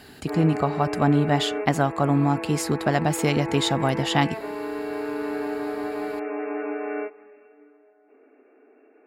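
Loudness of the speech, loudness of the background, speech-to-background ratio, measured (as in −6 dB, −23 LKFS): −23.5 LKFS, −31.0 LKFS, 7.5 dB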